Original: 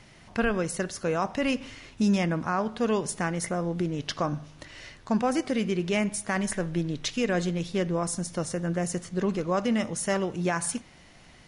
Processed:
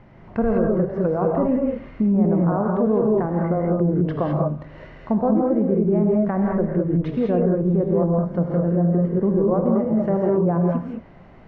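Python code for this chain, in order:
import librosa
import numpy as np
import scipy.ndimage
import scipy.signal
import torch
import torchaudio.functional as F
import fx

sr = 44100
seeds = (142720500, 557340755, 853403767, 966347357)

p1 = scipy.signal.sosfilt(scipy.signal.butter(2, 1100.0, 'lowpass', fs=sr, output='sos'), x)
p2 = fx.env_lowpass_down(p1, sr, base_hz=850.0, full_db=-25.5)
p3 = fx.rev_gated(p2, sr, seeds[0], gate_ms=230, shape='rising', drr_db=-1.0)
p4 = fx.over_compress(p3, sr, threshold_db=-24.0, ratio=-1.0)
y = p3 + F.gain(torch.from_numpy(p4), -1.0).numpy()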